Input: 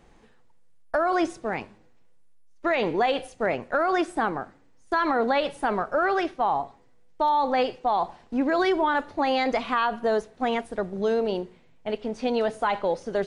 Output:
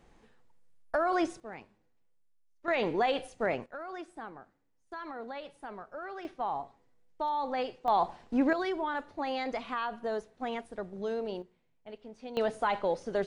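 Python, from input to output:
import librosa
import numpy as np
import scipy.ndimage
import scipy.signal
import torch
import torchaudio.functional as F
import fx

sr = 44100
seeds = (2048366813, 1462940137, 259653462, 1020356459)

y = fx.gain(x, sr, db=fx.steps((0.0, -5.0), (1.4, -15.0), (2.68, -5.0), (3.66, -18.0), (6.25, -9.5), (7.88, -2.0), (8.53, -10.0), (11.42, -17.0), (12.37, -4.5)))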